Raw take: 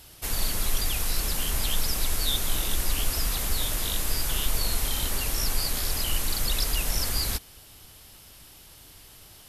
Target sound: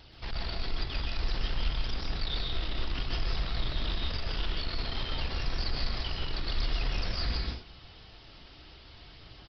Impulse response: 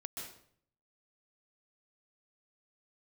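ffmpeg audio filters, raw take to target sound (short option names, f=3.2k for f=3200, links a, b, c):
-filter_complex "[0:a]aphaser=in_gain=1:out_gain=1:delay=3.7:decay=0.25:speed=0.54:type=triangular,aresample=11025,asoftclip=type=tanh:threshold=-27dB,aresample=44100[a];[1:a]atrim=start_sample=2205,afade=t=out:st=0.32:d=0.01,atrim=end_sample=14553[b];[a][b]afir=irnorm=-1:irlink=0,volume=2.5dB"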